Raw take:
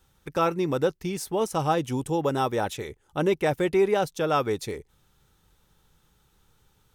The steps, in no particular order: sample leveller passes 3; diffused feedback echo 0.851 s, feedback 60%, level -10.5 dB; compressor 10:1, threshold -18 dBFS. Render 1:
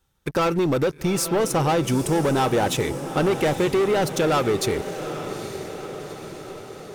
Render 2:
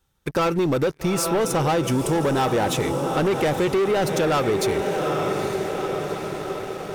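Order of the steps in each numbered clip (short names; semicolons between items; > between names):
sample leveller > compressor > diffused feedback echo; diffused feedback echo > sample leveller > compressor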